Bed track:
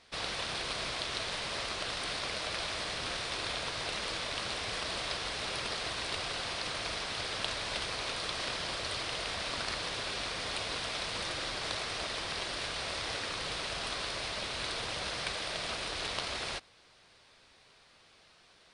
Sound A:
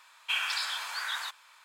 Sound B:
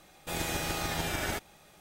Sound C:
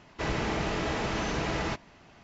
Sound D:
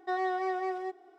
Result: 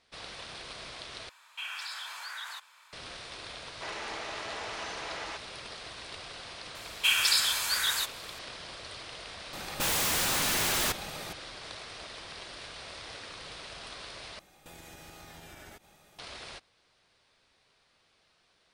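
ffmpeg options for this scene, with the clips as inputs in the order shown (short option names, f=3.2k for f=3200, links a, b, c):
-filter_complex "[1:a]asplit=2[a][b];[2:a]asplit=2[c][d];[0:a]volume=-7.5dB[e];[a]acompressor=threshold=-38dB:ratio=2:attack=0.57:release=72:knee=1:detection=rms[f];[3:a]highpass=610[g];[b]crystalizer=i=5:c=0[h];[c]aeval=exprs='0.112*sin(PI/2*7.94*val(0)/0.112)':c=same[i];[d]acompressor=threshold=-44dB:ratio=6:attack=3.2:release=140:knee=1:detection=peak[j];[e]asplit=3[k][l][m];[k]atrim=end=1.294[n];[f]atrim=end=1.64,asetpts=PTS-STARTPTS,volume=-1dB[o];[l]atrim=start=2.926:end=14.394[p];[j]atrim=end=1.8,asetpts=PTS-STARTPTS,volume=-3dB[q];[m]atrim=start=16.186[r];[g]atrim=end=2.23,asetpts=PTS-STARTPTS,volume=-5.5dB,afade=t=in:d=0.004:c=hsin,afade=t=out:st=2.226:d=0.004:c=hsin,adelay=3620[s];[h]atrim=end=1.64,asetpts=PTS-STARTPTS,volume=-2.5dB,afade=t=in:d=0.004:c=hsin,afade=t=out:st=1.636:d=0.004:c=hsin,adelay=6750[t];[i]atrim=end=1.8,asetpts=PTS-STARTPTS,volume=-6.5dB,afade=t=in:d=0.004:c=hsin,afade=t=out:st=1.796:d=0.004:c=hsin,adelay=9530[u];[n][o]acrossfade=d=0.004:c1=hsin:c2=hsin[v];[v][p]acrossfade=d=0.004:c1=hsin:c2=hsin[w];[w][q]acrossfade=d=0.004:c1=hsin:c2=hsin[x];[x][r]acrossfade=d=0.004:c1=hsin:c2=hsin[y];[y][s][t][u]amix=inputs=4:normalize=0"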